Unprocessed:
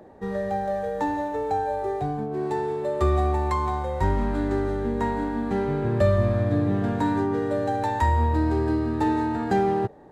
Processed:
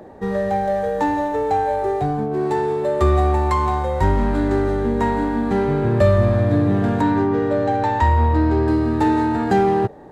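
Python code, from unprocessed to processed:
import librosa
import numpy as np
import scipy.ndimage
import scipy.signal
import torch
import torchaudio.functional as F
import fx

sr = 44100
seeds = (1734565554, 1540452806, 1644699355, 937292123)

p1 = fx.air_absorb(x, sr, metres=88.0, at=(7.01, 8.68))
p2 = 10.0 ** (-26.0 / 20.0) * np.tanh(p1 / 10.0 ** (-26.0 / 20.0))
p3 = p1 + (p2 * 10.0 ** (-6.0 / 20.0))
y = p3 * 10.0 ** (4.0 / 20.0)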